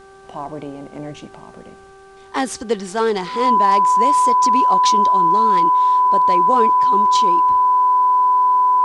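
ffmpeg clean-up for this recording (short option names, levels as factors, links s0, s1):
-af "bandreject=f=389:t=h:w=4,bandreject=f=778:t=h:w=4,bandreject=f=1167:t=h:w=4,bandreject=f=1556:t=h:w=4,bandreject=f=1000:w=30,agate=range=0.0891:threshold=0.0178"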